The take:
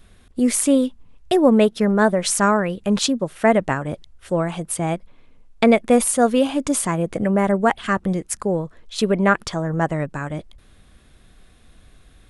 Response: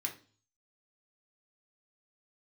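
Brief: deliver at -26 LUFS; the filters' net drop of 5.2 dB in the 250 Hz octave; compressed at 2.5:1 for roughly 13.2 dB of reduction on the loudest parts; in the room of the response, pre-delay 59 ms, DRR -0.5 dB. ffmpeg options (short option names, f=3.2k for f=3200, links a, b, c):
-filter_complex "[0:a]equalizer=f=250:t=o:g=-6.5,acompressor=threshold=-33dB:ratio=2.5,asplit=2[a][b];[1:a]atrim=start_sample=2205,adelay=59[c];[b][c]afir=irnorm=-1:irlink=0,volume=-0.5dB[d];[a][d]amix=inputs=2:normalize=0,volume=4dB"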